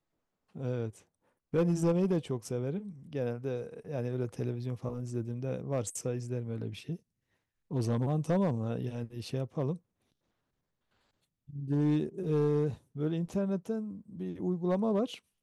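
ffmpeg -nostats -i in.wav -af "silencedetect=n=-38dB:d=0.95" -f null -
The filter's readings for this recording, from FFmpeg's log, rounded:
silence_start: 9.76
silence_end: 11.56 | silence_duration: 1.80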